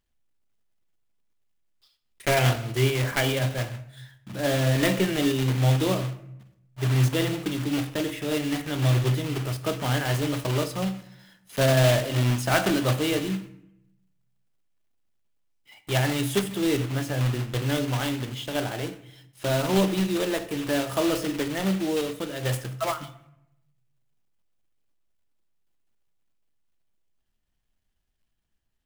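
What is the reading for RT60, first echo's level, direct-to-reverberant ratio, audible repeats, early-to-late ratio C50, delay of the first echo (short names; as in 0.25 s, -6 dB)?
0.80 s, none, 10.0 dB, none, 14.0 dB, none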